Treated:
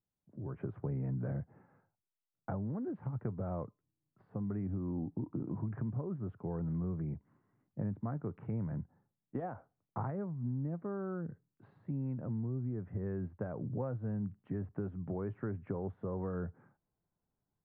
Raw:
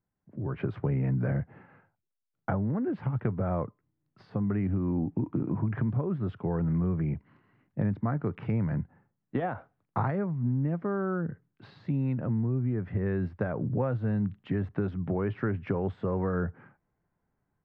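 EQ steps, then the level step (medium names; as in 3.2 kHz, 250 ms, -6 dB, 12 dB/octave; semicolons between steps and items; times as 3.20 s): low-pass 1.2 kHz 12 dB/octave; -8.5 dB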